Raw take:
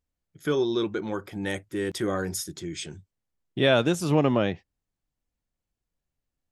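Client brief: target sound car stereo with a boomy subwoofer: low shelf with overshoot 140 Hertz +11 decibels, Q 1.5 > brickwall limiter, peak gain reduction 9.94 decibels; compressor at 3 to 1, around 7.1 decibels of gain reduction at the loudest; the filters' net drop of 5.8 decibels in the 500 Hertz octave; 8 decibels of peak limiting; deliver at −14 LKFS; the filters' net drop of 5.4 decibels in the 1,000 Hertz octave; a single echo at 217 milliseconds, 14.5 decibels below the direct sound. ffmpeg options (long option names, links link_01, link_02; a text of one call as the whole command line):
ffmpeg -i in.wav -af "equalizer=frequency=500:width_type=o:gain=-5,equalizer=frequency=1000:width_type=o:gain=-5.5,acompressor=threshold=-29dB:ratio=3,alimiter=level_in=2.5dB:limit=-24dB:level=0:latency=1,volume=-2.5dB,lowshelf=frequency=140:width_type=q:width=1.5:gain=11,aecho=1:1:217:0.188,volume=26.5dB,alimiter=limit=-5.5dB:level=0:latency=1" out.wav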